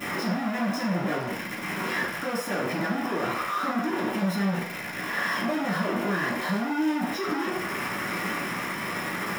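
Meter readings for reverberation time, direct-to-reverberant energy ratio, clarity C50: 0.60 s, -11.5 dB, 5.0 dB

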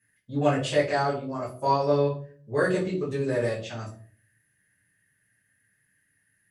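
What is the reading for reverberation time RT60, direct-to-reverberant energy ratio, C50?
0.45 s, -8.5 dB, 8.0 dB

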